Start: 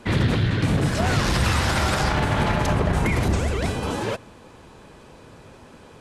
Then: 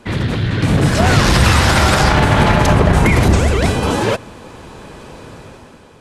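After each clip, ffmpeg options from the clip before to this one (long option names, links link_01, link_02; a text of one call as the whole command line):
ffmpeg -i in.wav -af "dynaudnorm=framelen=120:gausssize=11:maxgain=10dB,volume=1.5dB" out.wav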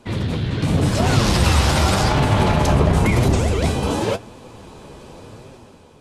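ffmpeg -i in.wav -af "equalizer=frequency=1700:width_type=o:width=0.9:gain=-6.5,flanger=delay=7.1:depth=7.8:regen=55:speed=0.91:shape=triangular" out.wav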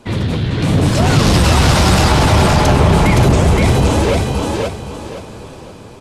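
ffmpeg -i in.wav -af "aecho=1:1:519|1038|1557|2076:0.708|0.198|0.0555|0.0155,acontrast=63,volume=-1dB" out.wav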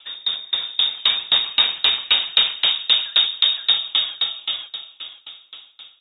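ffmpeg -i in.wav -af "lowpass=frequency=3200:width_type=q:width=0.5098,lowpass=frequency=3200:width_type=q:width=0.6013,lowpass=frequency=3200:width_type=q:width=0.9,lowpass=frequency=3200:width_type=q:width=2.563,afreqshift=-3800,aeval=exprs='val(0)*pow(10,-29*if(lt(mod(3.8*n/s,1),2*abs(3.8)/1000),1-mod(3.8*n/s,1)/(2*abs(3.8)/1000),(mod(3.8*n/s,1)-2*abs(3.8)/1000)/(1-2*abs(3.8)/1000))/20)':channel_layout=same,volume=-1dB" out.wav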